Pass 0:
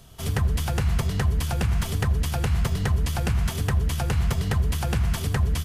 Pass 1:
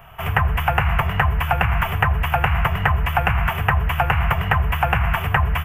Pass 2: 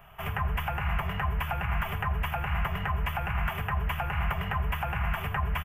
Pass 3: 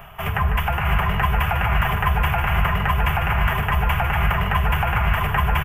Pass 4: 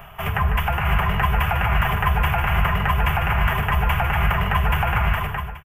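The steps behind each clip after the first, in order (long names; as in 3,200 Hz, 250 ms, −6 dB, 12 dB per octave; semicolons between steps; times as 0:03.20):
drawn EQ curve 170 Hz 0 dB, 250 Hz −11 dB, 520 Hz +1 dB, 750 Hz +13 dB, 1,200 Hz +13 dB, 2,800 Hz +10 dB, 4,100 Hz −23 dB, 6,000 Hz −18 dB, 9,700 Hz −14 dB, 14,000 Hz +5 dB; level +2.5 dB
comb filter 4.9 ms, depth 31%; brickwall limiter −10.5 dBFS, peak gain reduction 8.5 dB; level −8.5 dB
reversed playback; upward compression, threshold −34 dBFS; reversed playback; multi-tap delay 150/654/662 ms −9/−7/−6 dB; level +8.5 dB
fade-out on the ending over 0.59 s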